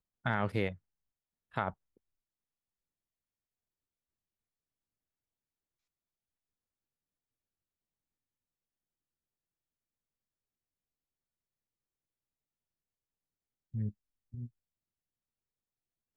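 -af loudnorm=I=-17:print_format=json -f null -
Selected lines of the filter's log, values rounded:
"input_i" : "-38.1",
"input_tp" : "-16.5",
"input_lra" : "7.7",
"input_thresh" : "-49.1",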